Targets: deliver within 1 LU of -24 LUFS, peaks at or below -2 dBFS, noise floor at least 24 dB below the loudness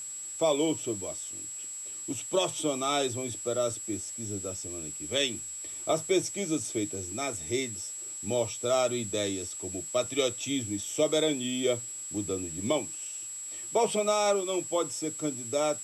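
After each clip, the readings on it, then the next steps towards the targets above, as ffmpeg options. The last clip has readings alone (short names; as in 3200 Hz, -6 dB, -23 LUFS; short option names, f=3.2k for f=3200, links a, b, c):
steady tone 7700 Hz; tone level -37 dBFS; noise floor -40 dBFS; noise floor target -55 dBFS; loudness -30.5 LUFS; peak -15.0 dBFS; loudness target -24.0 LUFS
-> -af "bandreject=f=7.7k:w=30"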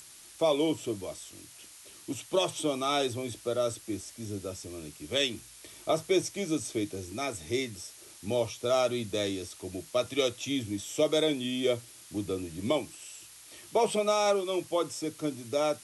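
steady tone none; noise floor -52 dBFS; noise floor target -55 dBFS
-> -af "afftdn=nr=6:nf=-52"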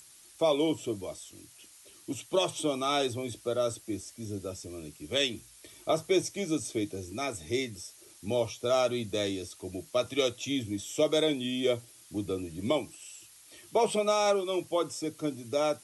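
noise floor -55 dBFS; loudness -31.0 LUFS; peak -15.5 dBFS; loudness target -24.0 LUFS
-> -af "volume=7dB"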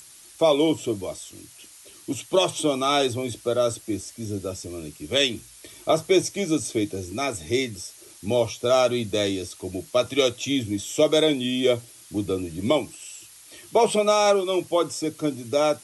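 loudness -24.0 LUFS; peak -8.5 dBFS; noise floor -48 dBFS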